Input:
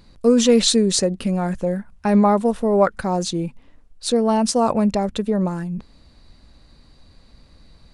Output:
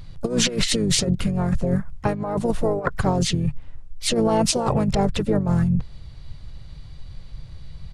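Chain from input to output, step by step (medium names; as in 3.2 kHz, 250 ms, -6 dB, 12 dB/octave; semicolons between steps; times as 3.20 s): resonant low shelf 180 Hz +8.5 dB, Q 3; compressor with a negative ratio -20 dBFS, ratio -0.5; harmony voices -12 st -9 dB, -5 st -5 dB, +4 st -15 dB; trim -1.5 dB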